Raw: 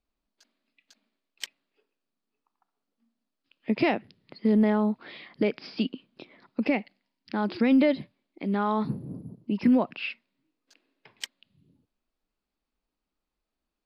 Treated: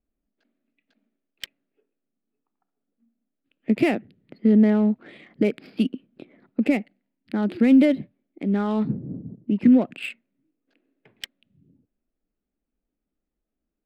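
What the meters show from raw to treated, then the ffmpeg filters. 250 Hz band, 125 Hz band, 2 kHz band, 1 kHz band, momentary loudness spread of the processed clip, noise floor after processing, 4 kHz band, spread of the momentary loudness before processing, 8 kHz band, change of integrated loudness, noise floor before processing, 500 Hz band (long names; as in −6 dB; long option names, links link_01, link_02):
+5.5 dB, +5.0 dB, +0.5 dB, −3.5 dB, 23 LU, −84 dBFS, −0.5 dB, 18 LU, can't be measured, +5.0 dB, below −85 dBFS, +2.5 dB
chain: -af "equalizer=frequency=250:width=3:gain=-6,adynamicsmooth=sensitivity=5.5:basefreq=1700,equalizer=frequency=250:width_type=o:width=0.67:gain=9,equalizer=frequency=1000:width_type=o:width=0.67:gain=-11,equalizer=frequency=6300:width_type=o:width=0.67:gain=-8,volume=3dB"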